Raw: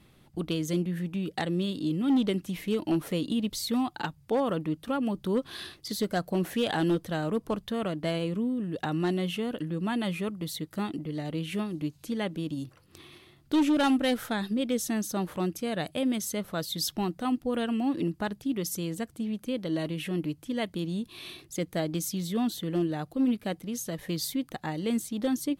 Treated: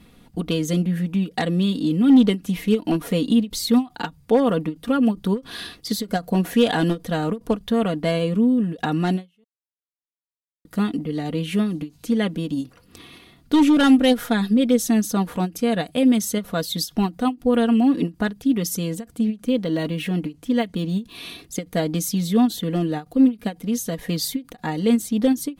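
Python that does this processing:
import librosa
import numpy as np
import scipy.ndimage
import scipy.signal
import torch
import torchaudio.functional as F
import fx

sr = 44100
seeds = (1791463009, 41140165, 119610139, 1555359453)

y = fx.resample_linear(x, sr, factor=2, at=(19.36, 21.15))
y = fx.edit(y, sr, fx.silence(start_s=9.44, length_s=1.21), tone=tone)
y = fx.low_shelf(y, sr, hz=490.0, db=3.0)
y = y + 0.58 * np.pad(y, (int(4.2 * sr / 1000.0), 0))[:len(y)]
y = fx.end_taper(y, sr, db_per_s=310.0)
y = F.gain(torch.from_numpy(y), 5.5).numpy()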